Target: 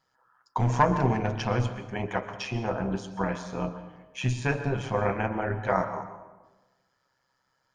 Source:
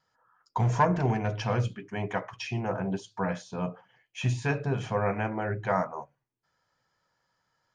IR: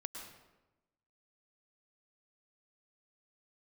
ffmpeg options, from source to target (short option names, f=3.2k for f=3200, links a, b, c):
-filter_complex "[0:a]tremolo=f=130:d=0.621,asplit=2[a][b];[1:a]atrim=start_sample=2205,asetrate=38808,aresample=44100,lowshelf=f=140:g=-5.5[c];[b][c]afir=irnorm=-1:irlink=0,volume=-1dB[d];[a][d]amix=inputs=2:normalize=0"